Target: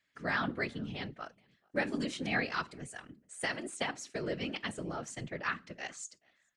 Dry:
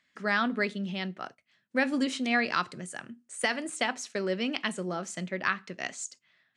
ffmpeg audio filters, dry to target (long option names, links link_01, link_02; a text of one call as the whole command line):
ffmpeg -i in.wav -filter_complex "[0:a]asplit=2[link_01][link_02];[link_02]adelay=431.5,volume=-28dB,highshelf=frequency=4000:gain=-9.71[link_03];[link_01][link_03]amix=inputs=2:normalize=0,afftfilt=real='hypot(re,im)*cos(2*PI*random(0))':imag='hypot(re,im)*sin(2*PI*random(1))':win_size=512:overlap=0.75" out.wav